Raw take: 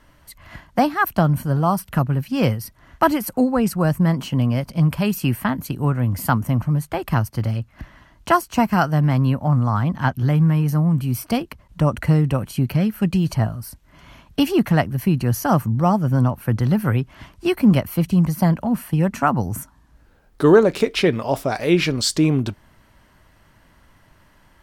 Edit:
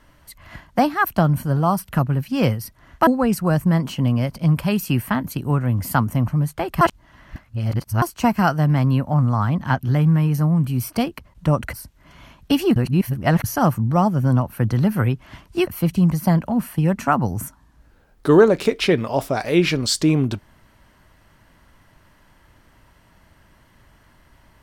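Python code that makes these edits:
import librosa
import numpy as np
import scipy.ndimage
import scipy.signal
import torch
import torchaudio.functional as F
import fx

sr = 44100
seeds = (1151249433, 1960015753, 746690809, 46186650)

y = fx.edit(x, sr, fx.cut(start_s=3.07, length_s=0.34),
    fx.reverse_span(start_s=7.15, length_s=1.21),
    fx.cut(start_s=12.07, length_s=1.54),
    fx.reverse_span(start_s=14.64, length_s=0.68),
    fx.cut(start_s=17.55, length_s=0.27), tone=tone)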